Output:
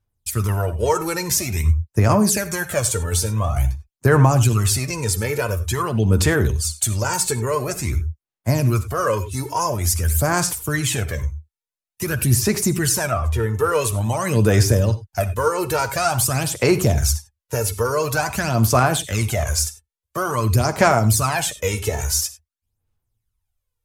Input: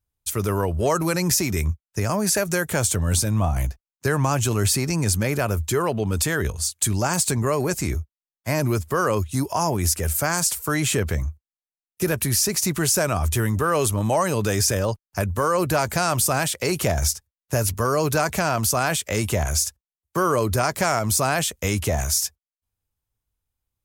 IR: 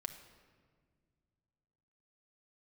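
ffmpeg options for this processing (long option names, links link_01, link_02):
-filter_complex "[0:a]asplit=3[link_01][link_02][link_03];[link_01]afade=type=out:start_time=13.1:duration=0.02[link_04];[link_02]lowpass=frequency=1900:poles=1,afade=type=in:start_time=13.1:duration=0.02,afade=type=out:start_time=13.53:duration=0.02[link_05];[link_03]afade=type=in:start_time=13.53:duration=0.02[link_06];[link_04][link_05][link_06]amix=inputs=3:normalize=0,aphaser=in_gain=1:out_gain=1:delay=2.3:decay=0.65:speed=0.48:type=sinusoidal[link_07];[1:a]atrim=start_sample=2205,atrim=end_sample=3087,asetrate=28665,aresample=44100[link_08];[link_07][link_08]afir=irnorm=-1:irlink=0,volume=-1dB"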